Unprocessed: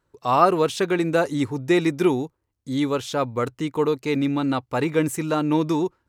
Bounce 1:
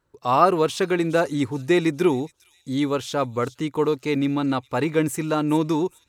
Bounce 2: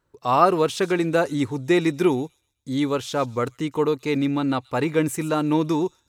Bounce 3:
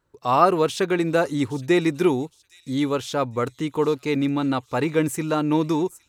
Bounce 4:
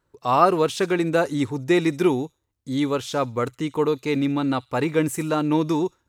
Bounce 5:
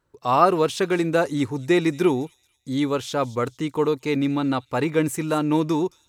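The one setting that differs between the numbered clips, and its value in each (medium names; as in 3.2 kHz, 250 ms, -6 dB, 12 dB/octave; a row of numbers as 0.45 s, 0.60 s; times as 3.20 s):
feedback echo behind a high-pass, time: 413 ms, 128 ms, 814 ms, 66 ms, 223 ms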